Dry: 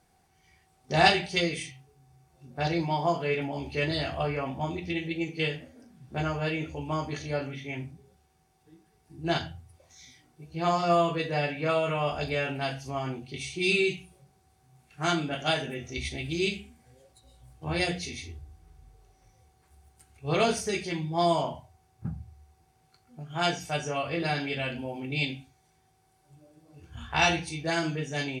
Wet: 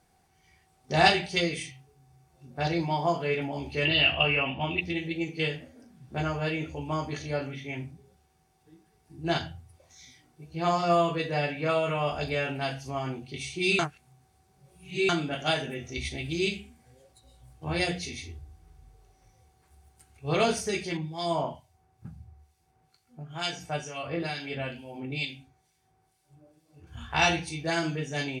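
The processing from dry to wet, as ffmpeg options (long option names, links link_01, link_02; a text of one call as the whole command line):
ffmpeg -i in.wav -filter_complex "[0:a]asettb=1/sr,asplit=3[link_01][link_02][link_03];[link_01]atrim=end=3.854[link_04];[link_02]atrim=start=3.85:end=4.81,asetpts=PTS-STARTPTS,afade=type=in:duration=0.004:curve=qsin,afade=type=out:start_time=0.956:duration=0.004:curve=qsin,lowpass=frequency=2800:width_type=q:width=14[link_05];[link_03]atrim=start=4.806[link_06];[link_04][link_05]acrossfade=duration=0.004:curve1=hsin:curve2=qsin[link_07];[link_07][link_06]acrossfade=duration=0.004:curve1=qsin:curve2=hsin,asettb=1/sr,asplit=3[link_08][link_09][link_10];[link_08]atrim=end=20.974[link_11];[link_09]atrim=start=20.97:end=26.87,asetpts=PTS-STARTPTS,afade=type=in:duration=0.004:curve=qsin,afade=type=out:start_time=5.896:duration=0.004:curve=qsin,acrossover=split=2000[link_12][link_13];[link_12]aeval=exprs='val(0)*(1-0.7/2+0.7/2*cos(2*PI*2.2*n/s))':channel_layout=same[link_14];[link_13]aeval=exprs='val(0)*(1-0.7/2-0.7/2*cos(2*PI*2.2*n/s))':channel_layout=same[link_15];[link_14][link_15]amix=inputs=2:normalize=0[link_16];[link_10]atrim=start=26.866[link_17];[link_11][link_16]acrossfade=duration=0.004:curve1=hsin:curve2=qsin[link_18];[link_18][link_17]acrossfade=duration=0.004:curve1=qsin:curve2=hsin,asplit=3[link_19][link_20][link_21];[link_19]atrim=end=13.792[link_22];[link_20]atrim=start=13.788:end=15.092,asetpts=PTS-STARTPTS,areverse[link_23];[link_21]atrim=start=15.088[link_24];[link_22][link_23]acrossfade=duration=0.004:curve1=hsin:curve2=hsin[link_25];[link_25][link_24]acrossfade=duration=0.004:curve1=hsin:curve2=hsin" out.wav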